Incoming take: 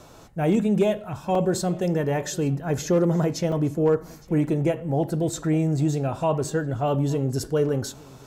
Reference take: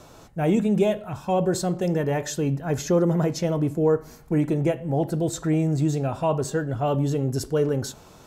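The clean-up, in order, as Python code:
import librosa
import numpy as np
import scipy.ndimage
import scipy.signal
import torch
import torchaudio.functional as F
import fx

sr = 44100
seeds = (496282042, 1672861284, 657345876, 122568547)

y = fx.fix_declip(x, sr, threshold_db=-12.5)
y = fx.fix_interpolate(y, sr, at_s=(1.35, 3.52, 4.47), length_ms=3.2)
y = fx.fix_echo_inverse(y, sr, delay_ms=863, level_db=-22.5)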